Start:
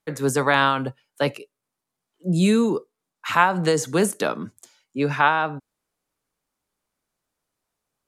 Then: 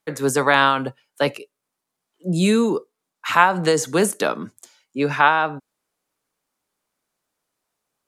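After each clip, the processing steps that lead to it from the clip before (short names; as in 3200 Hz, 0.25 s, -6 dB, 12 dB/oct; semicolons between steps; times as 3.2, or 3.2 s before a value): low shelf 120 Hz -11 dB; gain +3 dB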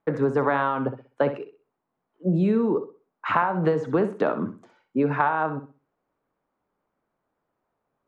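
LPF 1200 Hz 12 dB/oct; compressor 6:1, threshold -24 dBFS, peak gain reduction 13 dB; on a send: flutter echo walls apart 10.9 m, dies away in 0.34 s; on the sum: gain +5 dB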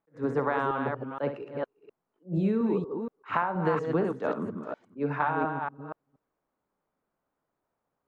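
reverse delay 0.237 s, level -5 dB; attack slew limiter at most 310 dB/s; gain -5.5 dB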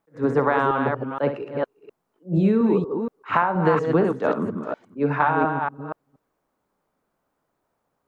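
de-esser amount 90%; gain +7.5 dB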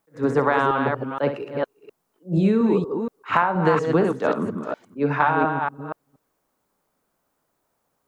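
high shelf 3700 Hz +10 dB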